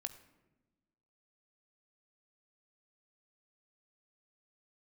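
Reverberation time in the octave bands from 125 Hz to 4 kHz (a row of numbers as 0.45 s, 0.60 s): 1.5 s, 1.6 s, 1.3 s, 0.90 s, 0.85 s, 0.60 s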